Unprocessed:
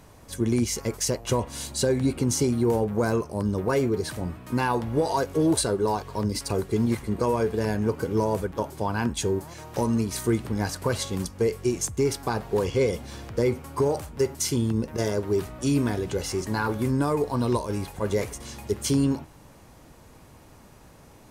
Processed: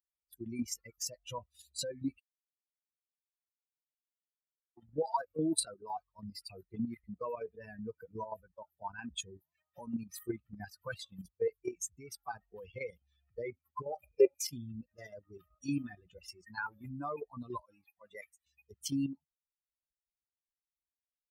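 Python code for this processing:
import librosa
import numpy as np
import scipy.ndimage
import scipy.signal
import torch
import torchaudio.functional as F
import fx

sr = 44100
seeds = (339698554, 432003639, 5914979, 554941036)

y = fx.small_body(x, sr, hz=(490.0, 2400.0), ring_ms=20, db=16, at=(14.03, 14.45))
y = fx.low_shelf(y, sr, hz=140.0, db=-11.5, at=(17.61, 18.46))
y = fx.edit(y, sr, fx.silence(start_s=2.2, length_s=2.57), tone=tone)
y = fx.bin_expand(y, sr, power=3.0)
y = fx.level_steps(y, sr, step_db=9)
y = fx.highpass(y, sr, hz=310.0, slope=6)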